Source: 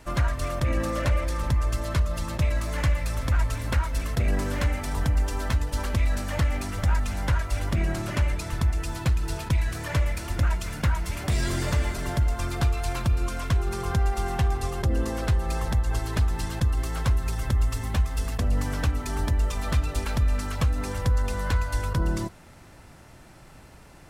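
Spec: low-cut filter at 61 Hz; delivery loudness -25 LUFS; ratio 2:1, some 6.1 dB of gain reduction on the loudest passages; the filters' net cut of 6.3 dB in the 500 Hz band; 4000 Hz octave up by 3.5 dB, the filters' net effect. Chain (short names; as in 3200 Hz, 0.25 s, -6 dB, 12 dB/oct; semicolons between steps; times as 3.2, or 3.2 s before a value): HPF 61 Hz; bell 500 Hz -8.5 dB; bell 4000 Hz +4.5 dB; compressor 2:1, threshold -31 dBFS; gain +8.5 dB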